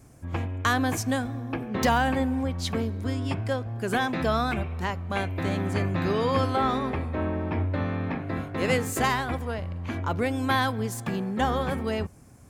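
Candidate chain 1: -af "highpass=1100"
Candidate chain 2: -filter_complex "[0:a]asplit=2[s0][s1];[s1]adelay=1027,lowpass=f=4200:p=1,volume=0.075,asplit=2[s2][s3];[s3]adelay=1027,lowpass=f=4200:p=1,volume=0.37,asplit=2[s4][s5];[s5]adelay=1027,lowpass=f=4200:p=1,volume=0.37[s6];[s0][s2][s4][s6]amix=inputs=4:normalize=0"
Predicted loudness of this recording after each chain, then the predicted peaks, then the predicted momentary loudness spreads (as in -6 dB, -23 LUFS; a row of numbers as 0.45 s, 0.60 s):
-33.5 LUFS, -27.5 LUFS; -12.5 dBFS, -9.0 dBFS; 14 LU, 7 LU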